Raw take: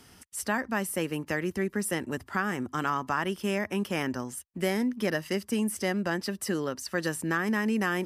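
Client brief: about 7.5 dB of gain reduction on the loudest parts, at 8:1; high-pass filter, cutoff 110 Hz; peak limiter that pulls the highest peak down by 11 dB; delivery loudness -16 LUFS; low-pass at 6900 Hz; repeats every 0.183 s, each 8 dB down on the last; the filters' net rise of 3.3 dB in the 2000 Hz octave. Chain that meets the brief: HPF 110 Hz; LPF 6900 Hz; bell 2000 Hz +4 dB; compressor 8:1, threshold -30 dBFS; limiter -29 dBFS; feedback echo 0.183 s, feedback 40%, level -8 dB; gain +22.5 dB

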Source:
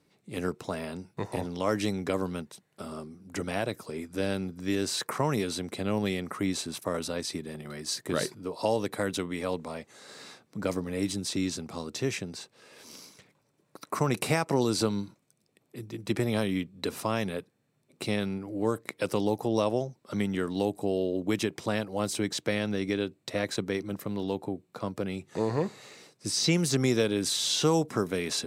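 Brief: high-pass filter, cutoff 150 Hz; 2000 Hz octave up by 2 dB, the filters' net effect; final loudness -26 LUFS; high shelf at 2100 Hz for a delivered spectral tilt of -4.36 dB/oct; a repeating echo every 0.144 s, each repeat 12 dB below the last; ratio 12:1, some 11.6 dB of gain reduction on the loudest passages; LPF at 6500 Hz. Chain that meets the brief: HPF 150 Hz; LPF 6500 Hz; bell 2000 Hz +4.5 dB; high shelf 2100 Hz -3.5 dB; compressor 12:1, threshold -33 dBFS; feedback echo 0.144 s, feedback 25%, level -12 dB; gain +13 dB

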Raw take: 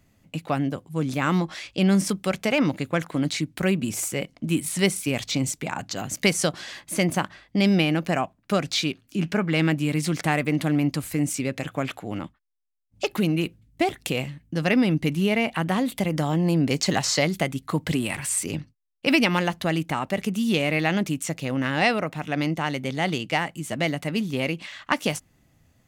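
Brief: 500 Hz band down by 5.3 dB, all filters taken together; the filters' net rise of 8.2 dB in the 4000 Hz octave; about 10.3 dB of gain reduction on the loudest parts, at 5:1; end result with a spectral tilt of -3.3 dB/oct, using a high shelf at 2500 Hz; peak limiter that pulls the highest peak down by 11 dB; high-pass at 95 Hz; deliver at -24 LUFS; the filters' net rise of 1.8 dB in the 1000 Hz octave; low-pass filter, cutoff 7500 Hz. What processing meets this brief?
HPF 95 Hz; LPF 7500 Hz; bell 500 Hz -9 dB; bell 1000 Hz +4.5 dB; high shelf 2500 Hz +7 dB; bell 4000 Hz +5 dB; compressor 5:1, threshold -24 dBFS; gain +5.5 dB; limiter -10 dBFS

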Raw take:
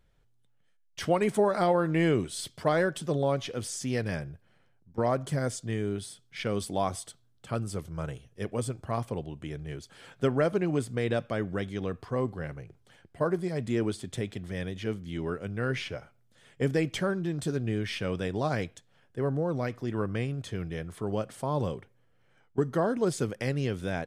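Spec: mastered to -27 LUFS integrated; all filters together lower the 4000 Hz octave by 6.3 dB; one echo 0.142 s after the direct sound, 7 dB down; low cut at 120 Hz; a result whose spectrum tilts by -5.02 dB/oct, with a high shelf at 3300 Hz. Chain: HPF 120 Hz; high shelf 3300 Hz -3 dB; bell 4000 Hz -6.5 dB; echo 0.142 s -7 dB; gain +4 dB

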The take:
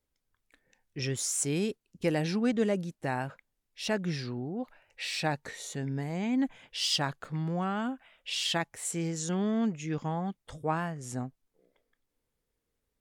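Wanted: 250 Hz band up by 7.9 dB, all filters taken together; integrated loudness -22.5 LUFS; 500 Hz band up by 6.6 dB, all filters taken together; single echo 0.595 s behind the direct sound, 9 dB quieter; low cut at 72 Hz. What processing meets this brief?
HPF 72 Hz; bell 250 Hz +8.5 dB; bell 500 Hz +5.5 dB; echo 0.595 s -9 dB; gain +4 dB

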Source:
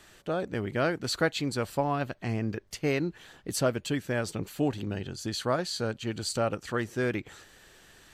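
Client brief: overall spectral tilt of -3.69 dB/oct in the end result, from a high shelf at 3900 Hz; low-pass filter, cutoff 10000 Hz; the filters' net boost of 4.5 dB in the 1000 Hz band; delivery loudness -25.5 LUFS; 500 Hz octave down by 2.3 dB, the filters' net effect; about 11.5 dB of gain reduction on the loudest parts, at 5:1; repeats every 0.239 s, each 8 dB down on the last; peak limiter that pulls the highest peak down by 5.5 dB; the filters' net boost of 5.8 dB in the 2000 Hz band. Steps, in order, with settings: LPF 10000 Hz; bell 500 Hz -5 dB; bell 1000 Hz +6 dB; bell 2000 Hz +4.5 dB; high shelf 3900 Hz +5.5 dB; compressor 5:1, threshold -33 dBFS; limiter -27 dBFS; feedback echo 0.239 s, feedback 40%, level -8 dB; gain +12.5 dB

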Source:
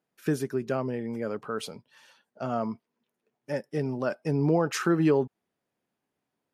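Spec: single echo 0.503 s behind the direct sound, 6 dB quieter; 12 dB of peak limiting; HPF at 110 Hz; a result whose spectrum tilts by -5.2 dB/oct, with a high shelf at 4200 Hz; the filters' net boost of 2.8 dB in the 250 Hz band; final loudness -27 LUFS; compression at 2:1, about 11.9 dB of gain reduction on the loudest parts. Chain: HPF 110 Hz; bell 250 Hz +4 dB; high shelf 4200 Hz +8.5 dB; compressor 2:1, threshold -39 dBFS; limiter -32 dBFS; echo 0.503 s -6 dB; gain +15 dB

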